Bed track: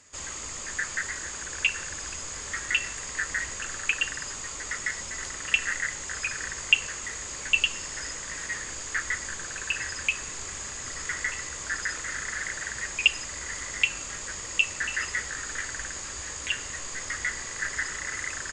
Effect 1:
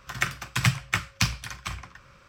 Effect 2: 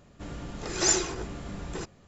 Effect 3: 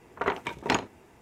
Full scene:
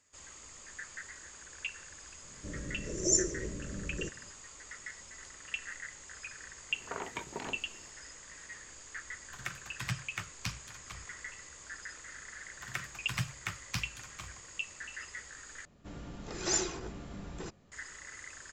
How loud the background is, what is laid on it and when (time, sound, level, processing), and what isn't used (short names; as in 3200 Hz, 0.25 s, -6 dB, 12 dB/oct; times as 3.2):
bed track -14.5 dB
2.24 add 2 -2.5 dB + FFT band-reject 650–5300 Hz
6.7 add 3 -9 dB + negative-ratio compressor -30 dBFS
9.24 add 1 -14 dB + spectral gate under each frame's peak -40 dB strong
12.53 add 1 -12.5 dB
15.65 replace with 2 -7 dB + bell 210 Hz +2 dB